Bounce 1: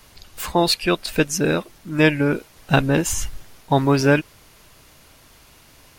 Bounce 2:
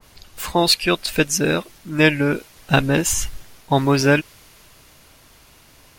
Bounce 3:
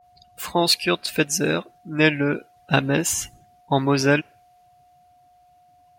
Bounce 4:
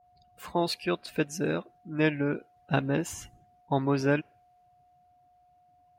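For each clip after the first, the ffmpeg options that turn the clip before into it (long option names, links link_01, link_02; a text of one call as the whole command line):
ffmpeg -i in.wav -af "adynamicequalizer=threshold=0.02:dfrequency=1600:dqfactor=0.7:tfrequency=1600:tqfactor=0.7:attack=5:release=100:ratio=0.375:range=2:mode=boostabove:tftype=highshelf" out.wav
ffmpeg -i in.wav -af "afftdn=noise_reduction=19:noise_floor=-41,highpass=110,aeval=exprs='val(0)+0.00282*sin(2*PI*720*n/s)':channel_layout=same,volume=-2.5dB" out.wav
ffmpeg -i in.wav -af "highshelf=frequency=2300:gain=-11.5,volume=-6dB" out.wav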